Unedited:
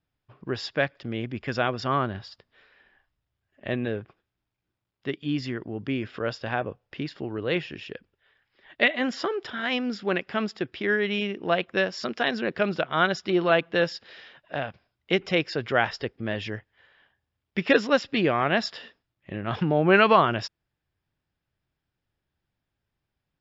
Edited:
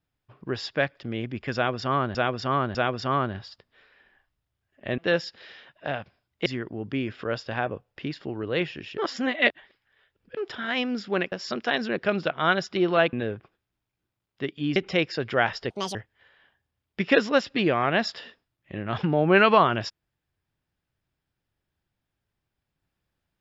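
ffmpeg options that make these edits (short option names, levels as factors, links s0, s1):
-filter_complex "[0:a]asplit=12[s0][s1][s2][s3][s4][s5][s6][s7][s8][s9][s10][s11];[s0]atrim=end=2.152[s12];[s1]atrim=start=1.548:end=2.152[s13];[s2]atrim=start=1.548:end=3.782[s14];[s3]atrim=start=13.658:end=15.142[s15];[s4]atrim=start=5.408:end=7.932[s16];[s5]atrim=start=7.928:end=9.322,asetpts=PTS-STARTPTS,areverse[s17];[s6]atrim=start=9.318:end=10.272[s18];[s7]atrim=start=11.848:end=13.662[s19];[s8]atrim=start=3.778:end=5.412[s20];[s9]atrim=start=15.138:end=16.084[s21];[s10]atrim=start=16.08:end=16.53,asetpts=PTS-STARTPTS,asetrate=79380,aresample=44100[s22];[s11]atrim=start=16.526[s23];[s12][s13]acrossfade=d=0.004:c1=hsin:c2=hsin[s24];[s24][s14]acrossfade=d=0.004:c1=hsin:c2=hsin[s25];[s25][s15]acrossfade=d=0.004:c1=hsin:c2=hsin[s26];[s26][s16]acrossfade=d=0.004:c1=hsin:c2=hsin[s27];[s27][s17]acrossfade=d=0.004:c1=hsin:c2=hsin[s28];[s28][s18]acrossfade=d=0.004:c1=hsin:c2=hsin[s29];[s29][s19]acrossfade=d=0.004:c1=hsin:c2=hsin[s30];[s30][s20]acrossfade=d=0.004:c1=hsin:c2=hsin[s31];[s31][s21]acrossfade=d=0.004:c1=hsin:c2=hsin[s32];[s32][s22]acrossfade=d=0.004:c1=hsin:c2=hsin[s33];[s33][s23]acrossfade=d=0.004:c1=hsin:c2=hsin"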